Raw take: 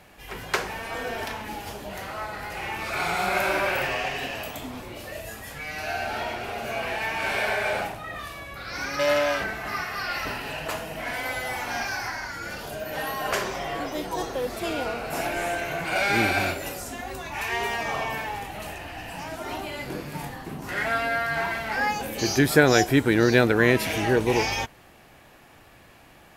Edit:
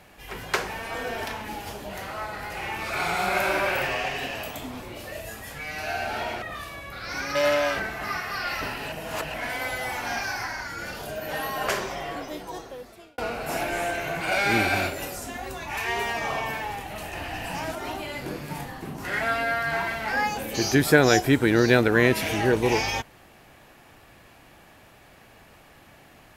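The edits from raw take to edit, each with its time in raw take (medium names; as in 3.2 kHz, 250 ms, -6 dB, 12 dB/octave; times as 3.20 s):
6.42–8.06 s: delete
10.56–10.98 s: reverse
13.35–14.82 s: fade out
18.77–19.39 s: gain +4 dB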